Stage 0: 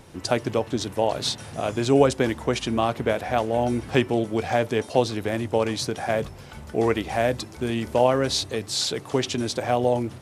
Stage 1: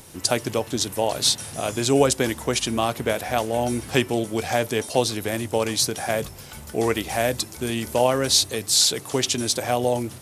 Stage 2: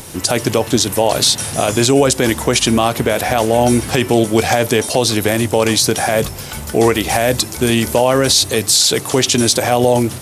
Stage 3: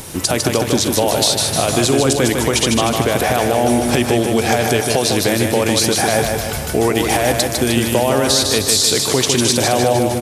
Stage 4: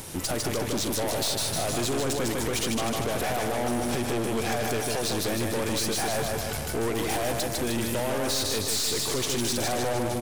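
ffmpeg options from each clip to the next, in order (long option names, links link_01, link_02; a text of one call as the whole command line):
ffmpeg -i in.wav -af "aemphasis=mode=production:type=75fm" out.wav
ffmpeg -i in.wav -af "alimiter=level_in=14dB:limit=-1dB:release=50:level=0:latency=1,volume=-1.5dB" out.wav
ffmpeg -i in.wav -af "acompressor=threshold=-15dB:ratio=2.5,aecho=1:1:153|306|459|612|765|918|1071:0.596|0.328|0.18|0.0991|0.0545|0.03|0.0165,volume=1dB" out.wav
ffmpeg -i in.wav -af "aeval=exprs='(tanh(8.91*val(0)+0.5)-tanh(0.5))/8.91':channel_layout=same,volume=-5.5dB" out.wav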